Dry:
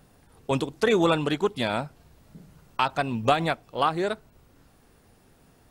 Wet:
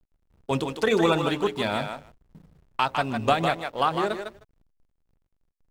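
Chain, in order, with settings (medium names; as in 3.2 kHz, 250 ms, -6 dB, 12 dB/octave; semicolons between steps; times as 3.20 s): hum notches 60/120/180/240/300/360/420/480/540/600 Hz; thinning echo 154 ms, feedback 17%, high-pass 460 Hz, level -5 dB; hysteresis with a dead band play -43 dBFS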